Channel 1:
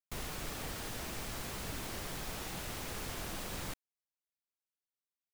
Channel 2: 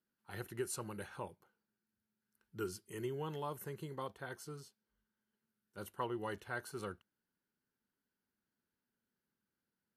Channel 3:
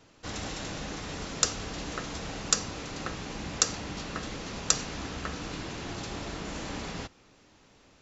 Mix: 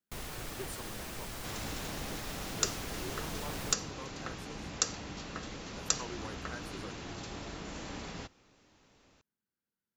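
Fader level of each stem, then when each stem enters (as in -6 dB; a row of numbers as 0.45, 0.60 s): -1.0, -5.0, -5.5 dB; 0.00, 0.00, 1.20 s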